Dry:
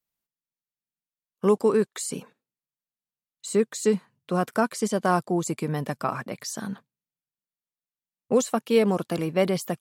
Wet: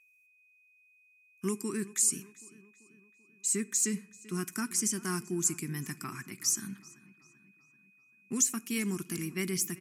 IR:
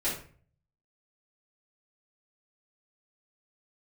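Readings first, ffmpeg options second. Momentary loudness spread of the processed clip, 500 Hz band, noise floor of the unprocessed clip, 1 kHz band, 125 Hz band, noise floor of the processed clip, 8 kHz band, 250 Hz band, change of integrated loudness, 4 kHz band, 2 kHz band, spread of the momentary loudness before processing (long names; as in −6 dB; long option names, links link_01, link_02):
12 LU, −17.5 dB, below −85 dBFS, −17.0 dB, −8.0 dB, −66 dBFS, +7.0 dB, −8.0 dB, −6.0 dB, −3.0 dB, −6.0 dB, 11 LU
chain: -filter_complex "[0:a]firequalizer=gain_entry='entry(370,0);entry(520,-30);entry(1000,-8);entry(2000,6);entry(3800,-4);entry(5800,15)':delay=0.05:min_phase=1,aeval=exprs='val(0)+0.002*sin(2*PI*2500*n/s)':channel_layout=same,asplit=2[link_01][link_02];[link_02]adelay=388,lowpass=frequency=3600:poles=1,volume=-19dB,asplit=2[link_03][link_04];[link_04]adelay=388,lowpass=frequency=3600:poles=1,volume=0.55,asplit=2[link_05][link_06];[link_06]adelay=388,lowpass=frequency=3600:poles=1,volume=0.55,asplit=2[link_07][link_08];[link_08]adelay=388,lowpass=frequency=3600:poles=1,volume=0.55,asplit=2[link_09][link_10];[link_10]adelay=388,lowpass=frequency=3600:poles=1,volume=0.55[link_11];[link_01][link_03][link_05][link_07][link_09][link_11]amix=inputs=6:normalize=0,asplit=2[link_12][link_13];[1:a]atrim=start_sample=2205,asetrate=35280,aresample=44100[link_14];[link_13][link_14]afir=irnorm=-1:irlink=0,volume=-27.5dB[link_15];[link_12][link_15]amix=inputs=2:normalize=0,aresample=32000,aresample=44100,volume=-8.5dB"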